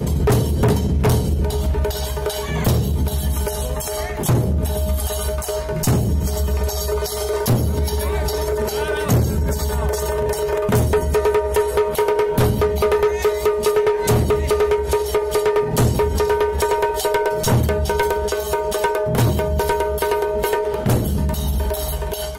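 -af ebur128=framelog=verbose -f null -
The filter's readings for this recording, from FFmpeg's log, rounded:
Integrated loudness:
  I:         -19.7 LUFS
  Threshold: -29.6 LUFS
Loudness range:
  LRA:         3.1 LU
  Threshold: -39.6 LUFS
  LRA low:   -21.3 LUFS
  LRA high:  -18.1 LUFS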